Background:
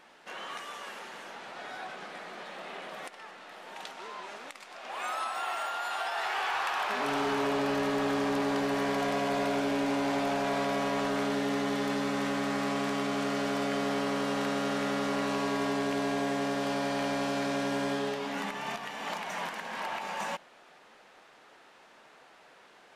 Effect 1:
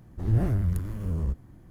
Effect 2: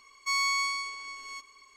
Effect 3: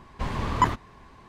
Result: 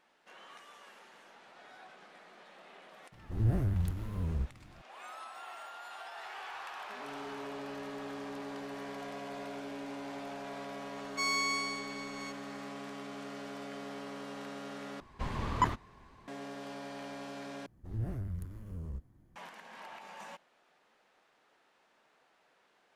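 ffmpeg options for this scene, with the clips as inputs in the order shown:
ffmpeg -i bed.wav -i cue0.wav -i cue1.wav -i cue2.wav -filter_complex "[1:a]asplit=2[link_01][link_02];[0:a]volume=-13dB,asplit=3[link_03][link_04][link_05];[link_03]atrim=end=15.004[link_06];[3:a]atrim=end=1.28,asetpts=PTS-STARTPTS,volume=-7dB[link_07];[link_04]atrim=start=16.276:end=17.664[link_08];[link_02]atrim=end=1.7,asetpts=PTS-STARTPTS,volume=-13dB[link_09];[link_05]atrim=start=19.356[link_10];[link_01]atrim=end=1.7,asetpts=PTS-STARTPTS,volume=-5.5dB,afade=type=in:duration=0.004:curve=hsin,afade=type=out:start_time=1.696:duration=0.004:curve=hsin,adelay=3120[link_11];[2:a]atrim=end=1.76,asetpts=PTS-STARTPTS,volume=-4.5dB,afade=type=in:duration=0.004:curve=hsin,afade=type=out:start_time=1.756:duration=0.004:curve=hsin,adelay=10910[link_12];[link_06][link_07]acrossfade=duration=0.004:curve1=hsin:curve2=hsin[link_13];[link_13][link_08]acrossfade=duration=0.004:curve1=hsin:curve2=hsin[link_14];[link_14][link_09]acrossfade=duration=0.004:curve1=hsin:curve2=hsin[link_15];[link_15][link_10]acrossfade=duration=0.004:curve1=hsin:curve2=hsin[link_16];[link_16][link_11][link_12]amix=inputs=3:normalize=0" out.wav

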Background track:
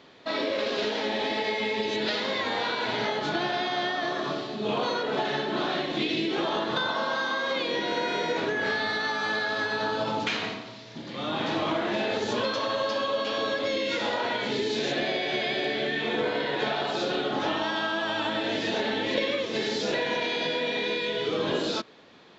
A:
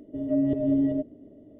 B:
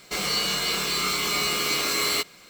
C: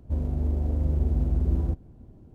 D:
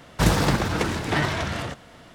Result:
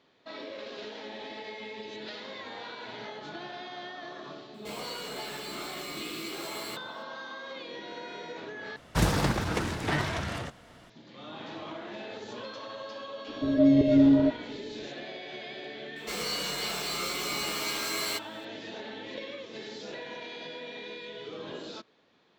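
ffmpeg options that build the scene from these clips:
ffmpeg -i bed.wav -i cue0.wav -i cue1.wav -i cue2.wav -i cue3.wav -filter_complex "[2:a]asplit=2[link_01][link_02];[0:a]volume=-13dB[link_03];[link_01]equalizer=frequency=5900:width_type=o:width=0.27:gain=-5.5[link_04];[1:a]acontrast=51[link_05];[link_03]asplit=2[link_06][link_07];[link_06]atrim=end=8.764[link_08];[4:a]atrim=end=2.14,asetpts=PTS-STARTPTS,volume=-5.5dB[link_09];[link_07]atrim=start=10.896[link_10];[link_04]atrim=end=2.49,asetpts=PTS-STARTPTS,volume=-15.5dB,afade=type=in:duration=0.004:curve=hsin,afade=type=out:start_time=2.486:duration=0.004:curve=hsin,adelay=4540[link_11];[link_05]atrim=end=1.59,asetpts=PTS-STARTPTS,volume=-2dB,afade=type=in:duration=0.004:curve=hsin,afade=type=out:start_time=1.586:duration=0.004:curve=hsin,adelay=13280[link_12];[link_02]atrim=end=2.49,asetpts=PTS-STARTPTS,volume=-8dB,afade=type=in:duration=0.004:curve=hsin,afade=type=out:start_time=2.486:duration=0.004:curve=hsin,adelay=15960[link_13];[link_08][link_09]acrossfade=duration=0.004:curve1=hsin:curve2=hsin[link_14];[link_14][link_10]acrossfade=duration=0.004:curve1=hsin:curve2=hsin[link_15];[link_15][link_11][link_12][link_13]amix=inputs=4:normalize=0" out.wav

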